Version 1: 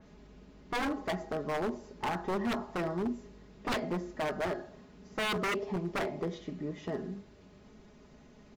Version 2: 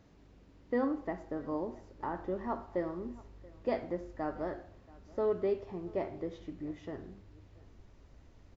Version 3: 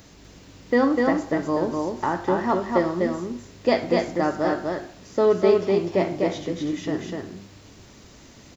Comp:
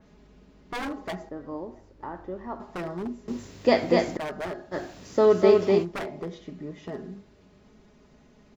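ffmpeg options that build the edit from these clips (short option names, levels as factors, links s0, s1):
-filter_complex "[2:a]asplit=2[s0][s1];[0:a]asplit=4[s2][s3][s4][s5];[s2]atrim=end=1.292[s6];[1:a]atrim=start=1.288:end=2.602[s7];[s3]atrim=start=2.598:end=3.282[s8];[s0]atrim=start=3.278:end=4.172[s9];[s4]atrim=start=4.168:end=4.75[s10];[s1]atrim=start=4.71:end=5.86[s11];[s5]atrim=start=5.82[s12];[s6][s7]acrossfade=d=0.004:c1=hsin:c2=hsin[s13];[s13][s8]acrossfade=d=0.004:c1=hsin:c2=hsin[s14];[s14][s9]acrossfade=d=0.004:c1=hsin:c2=hsin[s15];[s15][s10]acrossfade=d=0.004:c1=hsin:c2=hsin[s16];[s16][s11]acrossfade=d=0.04:c1=tri:c2=tri[s17];[s17][s12]acrossfade=d=0.04:c1=tri:c2=tri"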